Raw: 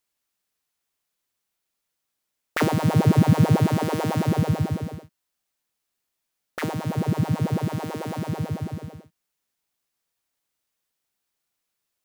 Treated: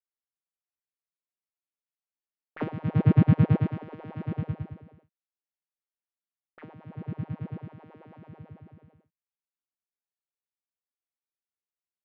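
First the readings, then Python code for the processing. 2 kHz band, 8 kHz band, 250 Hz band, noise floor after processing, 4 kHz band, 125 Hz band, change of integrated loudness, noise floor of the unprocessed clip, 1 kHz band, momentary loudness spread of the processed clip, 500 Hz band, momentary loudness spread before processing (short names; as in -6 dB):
-12.5 dB, under -35 dB, -6.0 dB, under -85 dBFS, under -15 dB, -4.5 dB, -3.5 dB, -81 dBFS, -14.0 dB, 20 LU, -11.0 dB, 15 LU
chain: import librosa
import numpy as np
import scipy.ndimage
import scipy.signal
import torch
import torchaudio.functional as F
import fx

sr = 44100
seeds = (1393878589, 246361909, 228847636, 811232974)

y = fx.tracing_dist(x, sr, depth_ms=0.034)
y = scipy.signal.sosfilt(scipy.signal.butter(4, 2700.0, 'lowpass', fs=sr, output='sos'), y)
y = fx.upward_expand(y, sr, threshold_db=-26.0, expansion=2.5)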